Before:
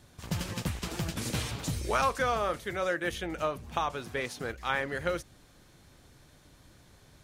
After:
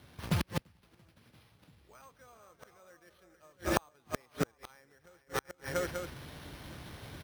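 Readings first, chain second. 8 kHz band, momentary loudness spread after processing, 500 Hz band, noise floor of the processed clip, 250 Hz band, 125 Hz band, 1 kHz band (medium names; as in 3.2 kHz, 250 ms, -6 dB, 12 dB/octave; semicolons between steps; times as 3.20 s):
-6.0 dB, 24 LU, -7.0 dB, -68 dBFS, -3.0 dB, -3.5 dB, -10.0 dB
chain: multi-tap echo 228/380/436/690/885 ms -19/-15/-11/-13/-18.5 dB; level rider gain up to 10 dB; inverted gate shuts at -17 dBFS, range -39 dB; careless resampling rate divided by 6×, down none, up hold; high-pass 50 Hz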